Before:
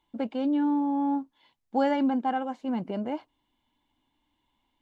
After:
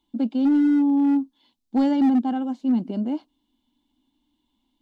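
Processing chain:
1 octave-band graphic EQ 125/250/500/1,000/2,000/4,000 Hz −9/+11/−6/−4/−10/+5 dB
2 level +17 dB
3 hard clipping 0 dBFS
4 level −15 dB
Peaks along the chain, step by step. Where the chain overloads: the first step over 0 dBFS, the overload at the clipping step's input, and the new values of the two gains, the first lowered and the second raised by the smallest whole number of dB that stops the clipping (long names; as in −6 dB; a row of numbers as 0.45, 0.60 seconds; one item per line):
−11.5, +5.5, 0.0, −15.0 dBFS
step 2, 5.5 dB
step 2 +11 dB, step 4 −9 dB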